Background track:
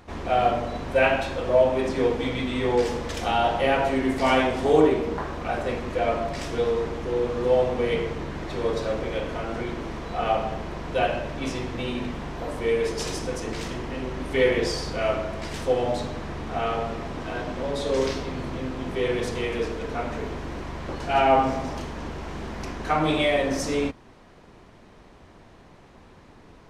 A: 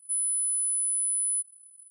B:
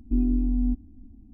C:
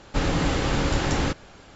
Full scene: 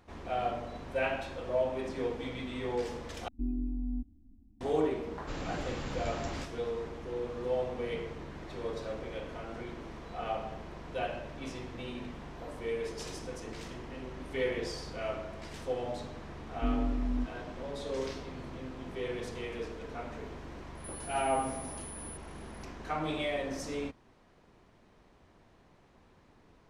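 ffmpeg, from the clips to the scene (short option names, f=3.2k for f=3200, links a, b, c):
-filter_complex "[2:a]asplit=2[a][b];[0:a]volume=-11.5dB[c];[1:a]acompressor=threshold=-34dB:ratio=6:attack=3.2:release=140:knee=1:detection=peak[d];[c]asplit=2[e][f];[e]atrim=end=3.284[g];[a]atrim=end=1.33,asetpts=PTS-STARTPTS,volume=-11dB[h];[f]atrim=start=4.606[i];[3:a]atrim=end=1.75,asetpts=PTS-STARTPTS,volume=-15.5dB,afade=t=in:d=0.004:c=hsin,afade=t=out:st=1.746:d=0.004:c=hsin,adelay=226233S[j];[b]atrim=end=1.33,asetpts=PTS-STARTPTS,volume=-8dB,afade=t=in:d=0.004:c=hsin,afade=t=out:st=1.326:d=0.004:c=hsin,adelay=16510[k];[d]atrim=end=1.9,asetpts=PTS-STARTPTS,volume=-12dB,afade=t=in:d=0.004:c=hsin,afade=t=out:st=1.896:d=0.004:c=hsin,adelay=20750[l];[g][h]acrossfade=d=0.004:c1=hsin:c2=hsin[m];[m][i]acrossfade=d=0.004:c1=hsin:c2=hsin[n];[n][j][k][l]amix=inputs=4:normalize=0"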